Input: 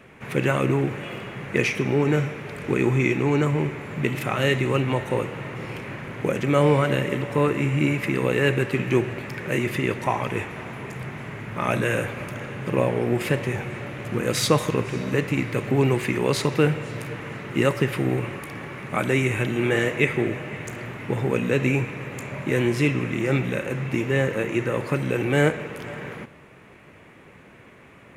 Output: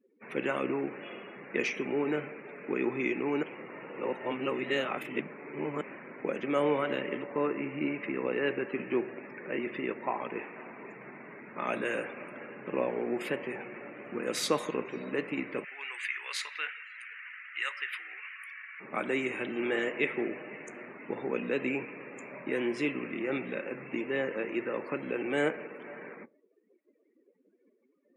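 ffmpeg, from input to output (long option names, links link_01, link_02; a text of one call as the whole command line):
ffmpeg -i in.wav -filter_complex "[0:a]asettb=1/sr,asplit=3[link_01][link_02][link_03];[link_01]atrim=end=7.234[link_04];[link_02]atrim=start=7.23:end=10.44,asetpts=PTS-STARTPTS,afade=type=in:duration=0.004:curve=qsin,afade=type=out:start_time=3.206:duration=0.004:curve=qsin,lowpass=frequency=2700:poles=1[link_05];[link_03]atrim=start=10.436[link_06];[link_04][link_05]acrossfade=duration=0.004:curve1=hsin:curve2=qsin[link_07];[link_07][link_06]acrossfade=duration=0.004:curve1=qsin:curve2=hsin,asettb=1/sr,asplit=3[link_08][link_09][link_10];[link_08]atrim=end=15.644[link_11];[link_09]atrim=start=15.64:end=18.8,asetpts=PTS-STARTPTS,afade=type=in:duration=0.004:curve=qsin,afade=type=out:start_time=3.156:duration=0.004:curve=qsin,highpass=frequency=1800:width_type=q:width=1.7[link_12];[link_10]atrim=start=18.796[link_13];[link_11][link_12]acrossfade=duration=0.004:curve1=hsin:curve2=qsin[link_14];[link_14][link_13]acrossfade=duration=0.004:curve1=qsin:curve2=hsin,asplit=3[link_15][link_16][link_17];[link_15]atrim=end=3.432[link_18];[link_16]atrim=start=3.428:end=5.812,asetpts=PTS-STARTPTS,areverse[link_19];[link_17]atrim=start=5.808[link_20];[link_18][link_19]acrossfade=duration=0.004:curve1=hsin:curve2=hsin[link_21];[link_21][link_20]acrossfade=duration=0.004:curve1=hsin:curve2=hsin,highpass=frequency=220:width=0.5412,highpass=frequency=220:width=1.3066,afftdn=noise_reduction=35:noise_floor=-40,volume=-8dB" out.wav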